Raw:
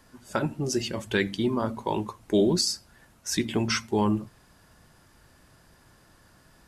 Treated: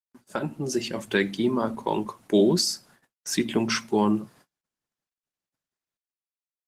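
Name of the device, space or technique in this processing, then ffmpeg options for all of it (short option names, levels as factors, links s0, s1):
video call: -af "highpass=f=140:w=0.5412,highpass=f=140:w=1.3066,dynaudnorm=f=120:g=11:m=1.68,agate=range=0.00141:threshold=0.00355:ratio=16:detection=peak,volume=0.794" -ar 48000 -c:a libopus -b:a 20k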